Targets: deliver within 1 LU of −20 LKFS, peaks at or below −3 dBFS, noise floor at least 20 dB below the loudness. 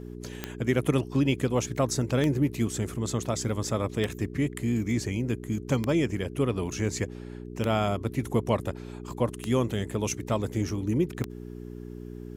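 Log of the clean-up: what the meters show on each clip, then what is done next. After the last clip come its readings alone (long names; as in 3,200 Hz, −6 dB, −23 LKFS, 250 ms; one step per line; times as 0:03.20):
number of clicks 7; mains hum 60 Hz; hum harmonics up to 420 Hz; level of the hum −38 dBFS; integrated loudness −28.5 LKFS; sample peak −9.0 dBFS; target loudness −20.0 LKFS
→ click removal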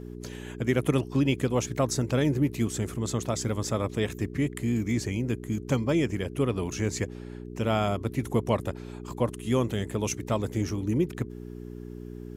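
number of clicks 0; mains hum 60 Hz; hum harmonics up to 420 Hz; level of the hum −38 dBFS
→ hum removal 60 Hz, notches 7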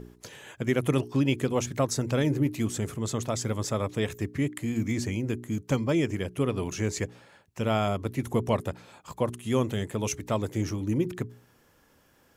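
mains hum none found; integrated loudness −29.0 LKFS; sample peak −11.0 dBFS; target loudness −20.0 LKFS
→ level +9 dB
brickwall limiter −3 dBFS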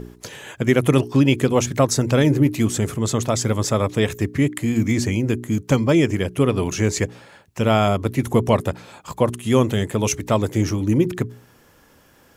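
integrated loudness −20.0 LKFS; sample peak −3.0 dBFS; background noise floor −54 dBFS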